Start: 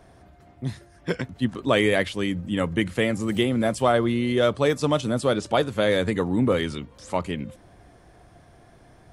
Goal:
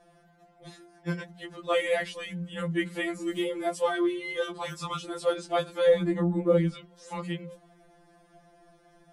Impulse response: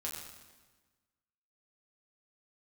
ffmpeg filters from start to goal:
-filter_complex "[0:a]asettb=1/sr,asplit=3[s0][s1][s2];[s0]atrim=end=5.894[s3];[s1]atrim=start=5.89:end=6.73,asetpts=PTS-STARTPTS,afade=t=in:d=0.004:c=qsin,afade=t=out:st=0.836:d=0.004:c=qsin,tiltshelf=f=970:g=7.5[s4];[s2]atrim=start=6.726[s5];[s3][s4]acrossfade=d=0.004:c1=hsin:c2=qsin[s6];[s6][s5]acrossfade=d=0.004:c1=qsin:c2=hsin,bandreject=f=60:t=h:w=6,bandreject=f=120:t=h:w=6,bandreject=f=180:t=h:w=6,bandreject=f=240:t=h:w=6,bandreject=f=300:t=h:w=6,bandreject=f=360:t=h:w=6,afftfilt=real='re*2.83*eq(mod(b,8),0)':imag='im*2.83*eq(mod(b,8),0)':win_size=2048:overlap=0.75,volume=0.631"

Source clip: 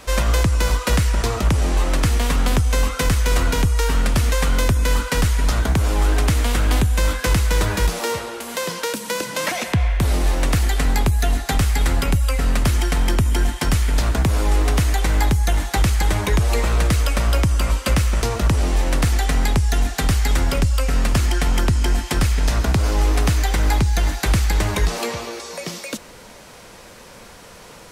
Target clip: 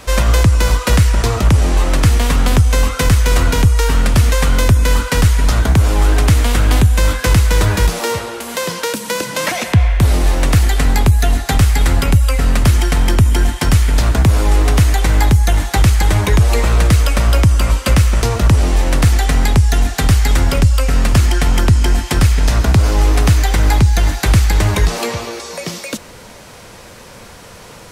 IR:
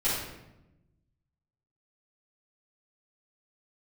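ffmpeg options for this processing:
-af "equalizer=f=100:t=o:w=0.95:g=5.5,volume=1.68"

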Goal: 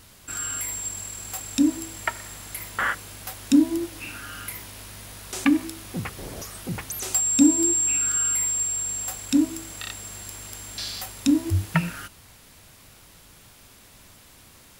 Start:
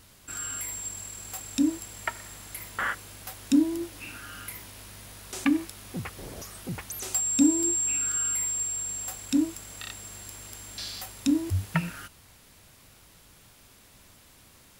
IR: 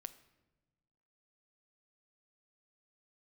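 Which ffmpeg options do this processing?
-af "bandreject=f=65.07:t=h:w=4,bandreject=f=130.14:t=h:w=4,bandreject=f=195.21:t=h:w=4,bandreject=f=260.28:t=h:w=4,bandreject=f=325.35:t=h:w=4,bandreject=f=390.42:t=h:w=4,bandreject=f=455.49:t=h:w=4,bandreject=f=520.56:t=h:w=4,bandreject=f=585.63:t=h:w=4,volume=1.68"

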